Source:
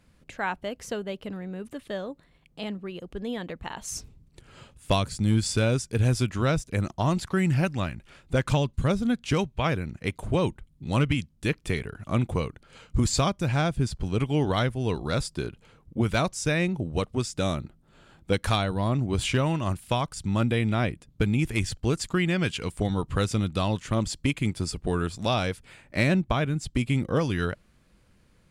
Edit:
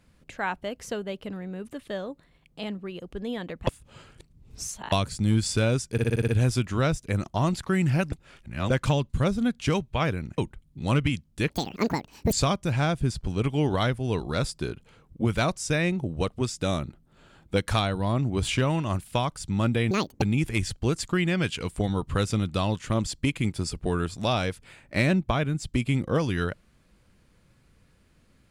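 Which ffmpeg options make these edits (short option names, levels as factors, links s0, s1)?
-filter_complex "[0:a]asplit=16[s0][s1][s2][s3][s4][s5][s6][s7][s8][s9][s10][s11][s12][s13][s14][s15];[s0]atrim=end=3.672[s16];[s1]atrim=start=3.668:end=4.922,asetpts=PTS-STARTPTS,areverse[s17];[s2]atrim=start=4.918:end=5.982[s18];[s3]atrim=start=5.918:end=5.982[s19];[s4]atrim=start=5.918:end=5.982[s20];[s5]atrim=start=5.918:end=5.982[s21];[s6]atrim=start=5.918:end=5.982[s22];[s7]atrim=start=5.918:end=5.982[s23];[s8]atrim=start=5.918:end=7.762[s24];[s9]atrim=start=7.758:end=8.342,asetpts=PTS-STARTPTS,areverse[s25];[s10]atrim=start=8.338:end=10.022[s26];[s11]atrim=start=10.428:end=11.554[s27];[s12]atrim=start=11.55:end=13.09,asetpts=PTS-STARTPTS,asetrate=82026,aresample=44100[s28];[s13]atrim=start=13.086:end=20.674[s29];[s14]atrim=start=20.67:end=21.23,asetpts=PTS-STARTPTS,asetrate=79380,aresample=44100[s30];[s15]atrim=start=21.226[s31];[s16][s17]acrossfade=d=0.004:c1=hsin:c2=hsin[s32];[s32][s18]acrossfade=d=0.004:c1=hsin:c2=hsin[s33];[s33][s19]acrossfade=d=0.004:c1=hsin:c2=hsin[s34];[s34][s20]acrossfade=d=0.004:c1=hsin:c2=hsin[s35];[s35][s21]acrossfade=d=0.004:c1=hsin:c2=hsin[s36];[s36][s22]acrossfade=d=0.004:c1=hsin:c2=hsin[s37];[s37][s23]acrossfade=d=0.004:c1=hsin:c2=hsin[s38];[s38][s24]acrossfade=d=0.004:c1=hsin:c2=hsin[s39];[s39][s25]acrossfade=d=0.004:c1=hsin:c2=hsin[s40];[s40][s26]acrossfade=d=0.004:c1=hsin:c2=hsin[s41];[s41][s27]acrossfade=d=0.004:c1=hsin:c2=hsin[s42];[s42][s28]acrossfade=d=0.004:c1=hsin:c2=hsin[s43];[s43][s29]acrossfade=d=0.004:c1=hsin:c2=hsin[s44];[s44][s30]acrossfade=d=0.004:c1=hsin:c2=hsin[s45];[s45][s31]acrossfade=d=0.004:c1=hsin:c2=hsin"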